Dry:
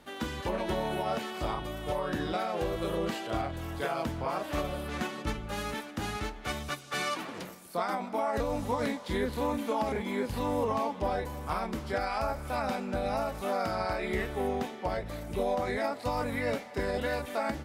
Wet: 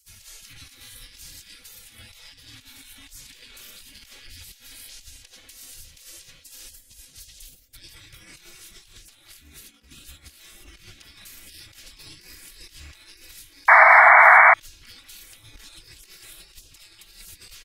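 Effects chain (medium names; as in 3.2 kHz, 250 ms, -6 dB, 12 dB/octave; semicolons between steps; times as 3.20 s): 9.39–10.09 s: resonant low shelf 430 Hz -13.5 dB, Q 3; spectral gate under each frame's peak -25 dB weak; comb 3.6 ms, depth 37%; on a send: bucket-brigade echo 410 ms, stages 2048, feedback 81%, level -16 dB; on the sum: compressor with a negative ratio -52 dBFS, ratio -0.5; amplifier tone stack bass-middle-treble 10-0-1; 13.68–14.54 s: painted sound noise 630–2300 Hz -37 dBFS; loudness maximiser +29 dB; trim -1 dB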